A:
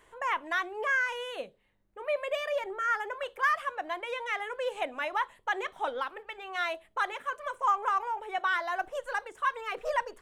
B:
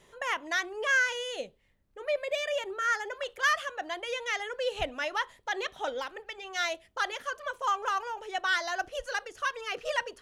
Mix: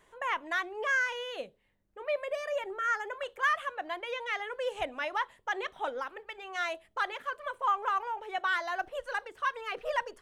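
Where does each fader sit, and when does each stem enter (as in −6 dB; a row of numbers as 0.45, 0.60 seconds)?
−4.5, −11.0 decibels; 0.00, 0.00 seconds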